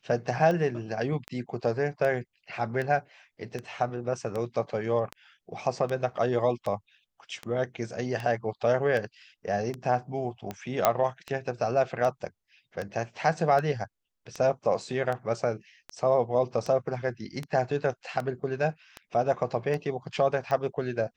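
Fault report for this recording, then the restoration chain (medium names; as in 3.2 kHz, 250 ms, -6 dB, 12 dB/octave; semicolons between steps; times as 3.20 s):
tick 78 rpm -20 dBFS
10.85 s: pop -6 dBFS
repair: de-click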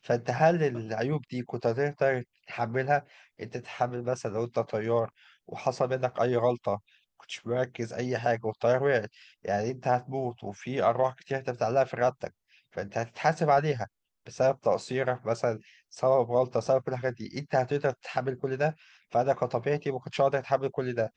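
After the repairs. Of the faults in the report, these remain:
nothing left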